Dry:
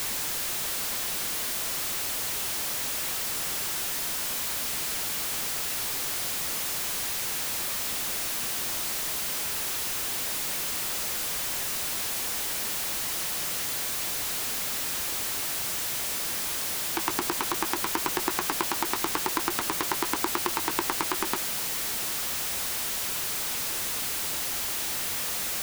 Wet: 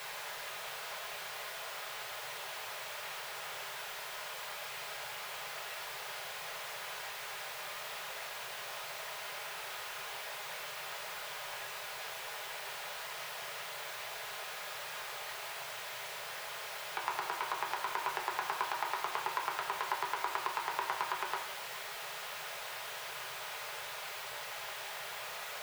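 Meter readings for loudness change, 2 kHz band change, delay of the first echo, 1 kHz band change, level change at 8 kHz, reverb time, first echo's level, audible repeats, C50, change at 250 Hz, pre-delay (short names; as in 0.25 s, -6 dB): -12.5 dB, -5.0 dB, none, -3.5 dB, -18.0 dB, 0.70 s, none, none, 8.5 dB, -22.0 dB, 5 ms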